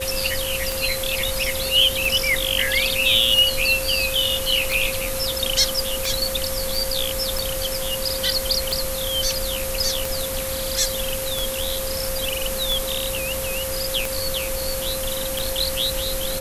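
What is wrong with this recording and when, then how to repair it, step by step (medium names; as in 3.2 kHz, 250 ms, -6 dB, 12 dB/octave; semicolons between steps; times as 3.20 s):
tick 45 rpm
whine 530 Hz -28 dBFS
6.75 s: pop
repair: de-click; band-stop 530 Hz, Q 30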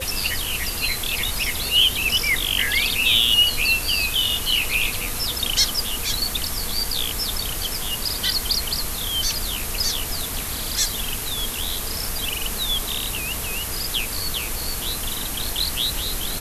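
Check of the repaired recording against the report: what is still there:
nothing left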